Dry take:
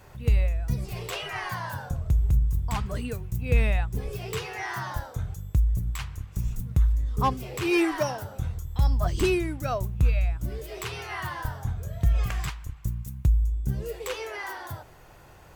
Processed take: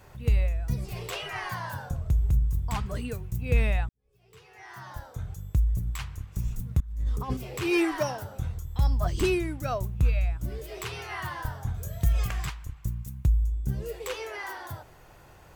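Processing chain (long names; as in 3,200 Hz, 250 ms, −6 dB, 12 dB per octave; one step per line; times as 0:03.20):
0:03.89–0:05.43: fade in quadratic
0:06.80–0:07.37: compressor whose output falls as the input rises −27 dBFS, ratio −0.5
0:11.74–0:12.27: high-shelf EQ 4,800 Hz +11 dB
level −1.5 dB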